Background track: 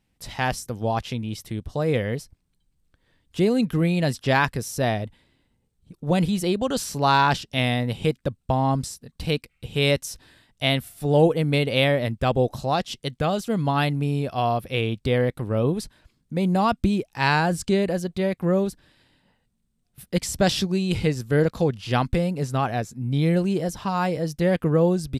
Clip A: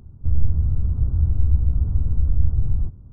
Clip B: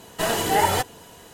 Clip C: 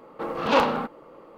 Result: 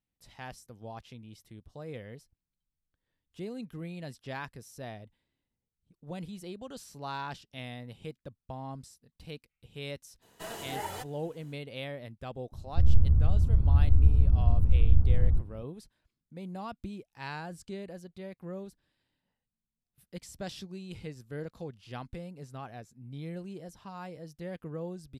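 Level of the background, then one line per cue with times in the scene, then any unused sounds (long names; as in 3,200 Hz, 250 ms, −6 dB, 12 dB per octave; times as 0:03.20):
background track −19 dB
0:10.21: mix in B −17.5 dB, fades 0.02 s
0:12.52: mix in A −2.5 dB
not used: C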